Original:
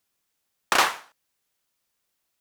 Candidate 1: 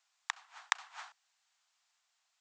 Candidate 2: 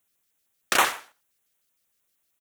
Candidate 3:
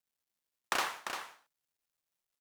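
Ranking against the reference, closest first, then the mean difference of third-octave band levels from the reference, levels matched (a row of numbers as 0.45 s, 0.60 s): 2, 3, 1; 2.0 dB, 4.5 dB, 14.5 dB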